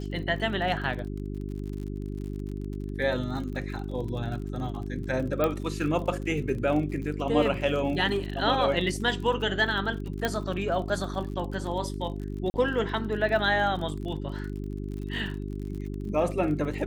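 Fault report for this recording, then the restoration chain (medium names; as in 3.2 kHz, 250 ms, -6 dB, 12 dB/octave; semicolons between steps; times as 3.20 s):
crackle 49 per s -36 dBFS
hum 50 Hz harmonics 8 -34 dBFS
5.44 s: pop -13 dBFS
10.25 s: pop -12 dBFS
12.50–12.54 s: dropout 40 ms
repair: de-click; de-hum 50 Hz, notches 8; interpolate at 12.50 s, 40 ms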